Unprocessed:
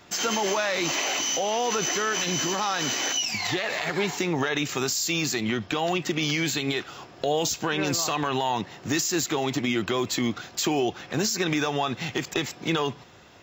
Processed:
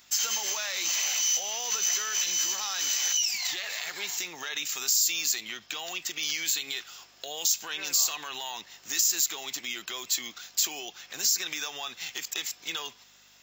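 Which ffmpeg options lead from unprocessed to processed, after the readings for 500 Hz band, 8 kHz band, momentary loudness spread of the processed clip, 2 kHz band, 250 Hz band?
-19.0 dB, +3.5 dB, 12 LU, -6.0 dB, -23.0 dB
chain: -af "aeval=exprs='val(0)+0.01*(sin(2*PI*50*n/s)+sin(2*PI*2*50*n/s)/2+sin(2*PI*3*50*n/s)/3+sin(2*PI*4*50*n/s)/4+sin(2*PI*5*50*n/s)/5)':c=same,aderivative,volume=1.68"

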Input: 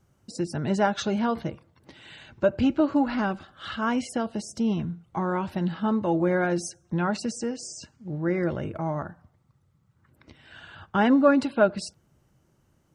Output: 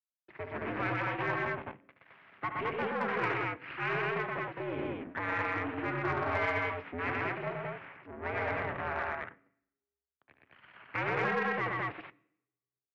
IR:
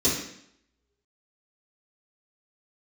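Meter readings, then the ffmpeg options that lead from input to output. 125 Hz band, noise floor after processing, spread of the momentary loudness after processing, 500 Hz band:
-8.5 dB, under -85 dBFS, 10 LU, -9.0 dB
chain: -filter_complex "[0:a]aeval=exprs='abs(val(0))':c=same,equalizer=f=220:t=o:w=0.79:g=4.5,alimiter=limit=0.126:level=0:latency=1:release=36,aeval=exprs='sgn(val(0))*max(abs(val(0))-0.00501,0)':c=same,highpass=f=180:t=q:w=0.5412,highpass=f=180:t=q:w=1.307,lowpass=f=2400:t=q:w=0.5176,lowpass=f=2400:t=q:w=0.7071,lowpass=f=2400:t=q:w=1.932,afreqshift=-80,aecho=1:1:72.89|122.4|215.7:0.355|0.794|0.891,asplit=2[s0][s1];[1:a]atrim=start_sample=2205[s2];[s1][s2]afir=irnorm=-1:irlink=0,volume=0.0299[s3];[s0][s3]amix=inputs=2:normalize=0,aeval=exprs='0.188*(cos(1*acos(clip(val(0)/0.188,-1,1)))-cos(1*PI/2))+0.00335*(cos(8*acos(clip(val(0)/0.188,-1,1)))-cos(8*PI/2))':c=same,tiltshelf=f=1100:g=-8,volume=0.841"

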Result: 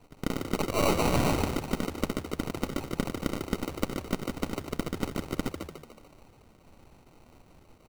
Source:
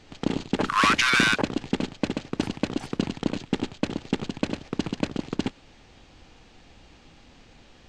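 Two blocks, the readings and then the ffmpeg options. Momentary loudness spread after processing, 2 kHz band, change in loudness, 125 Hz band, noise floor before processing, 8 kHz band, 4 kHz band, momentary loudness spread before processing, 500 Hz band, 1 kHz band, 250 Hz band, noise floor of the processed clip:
9 LU, -13.0 dB, -5.5 dB, 0.0 dB, -54 dBFS, -3.0 dB, -9.5 dB, 12 LU, 0.0 dB, -6.0 dB, -4.0 dB, -58 dBFS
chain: -filter_complex "[0:a]aeval=exprs='if(lt(val(0),0),0.251*val(0),val(0))':c=same,asplit=7[s0][s1][s2][s3][s4][s5][s6];[s1]adelay=146,afreqshift=73,volume=0.473[s7];[s2]adelay=292,afreqshift=146,volume=0.226[s8];[s3]adelay=438,afreqshift=219,volume=0.108[s9];[s4]adelay=584,afreqshift=292,volume=0.0525[s10];[s5]adelay=730,afreqshift=365,volume=0.0251[s11];[s6]adelay=876,afreqshift=438,volume=0.012[s12];[s0][s7][s8][s9][s10][s11][s12]amix=inputs=7:normalize=0,acrusher=samples=26:mix=1:aa=0.000001,volume=0.794"

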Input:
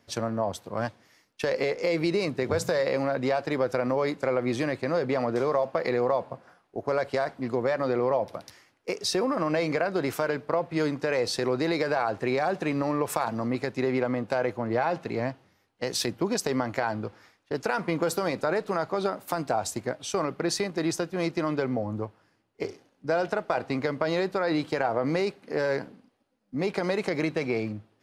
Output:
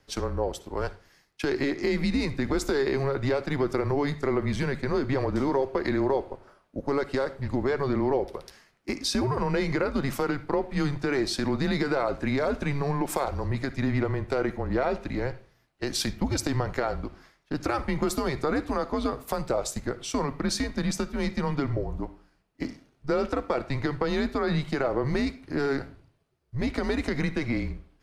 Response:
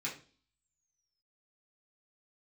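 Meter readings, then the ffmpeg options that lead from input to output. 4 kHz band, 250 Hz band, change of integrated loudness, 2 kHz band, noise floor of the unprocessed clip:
0.0 dB, +2.0 dB, -0.5 dB, -1.0 dB, -69 dBFS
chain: -filter_complex "[0:a]asplit=2[s0][s1];[1:a]atrim=start_sample=2205,adelay=56[s2];[s1][s2]afir=irnorm=-1:irlink=0,volume=0.133[s3];[s0][s3]amix=inputs=2:normalize=0,afreqshift=-140"

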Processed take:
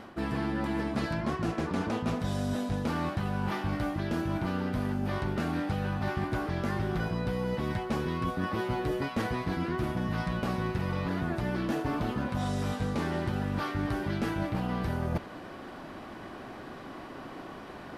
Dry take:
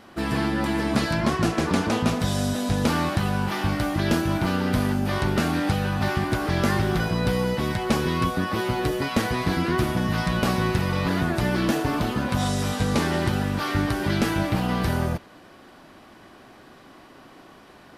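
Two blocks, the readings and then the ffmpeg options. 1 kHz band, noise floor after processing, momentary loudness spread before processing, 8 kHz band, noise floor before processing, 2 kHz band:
-7.5 dB, -44 dBFS, 2 LU, -15.0 dB, -49 dBFS, -9.0 dB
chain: -af "highshelf=f=3100:g=-9.5,areverse,acompressor=threshold=0.02:ratio=8,areverse,volume=2"

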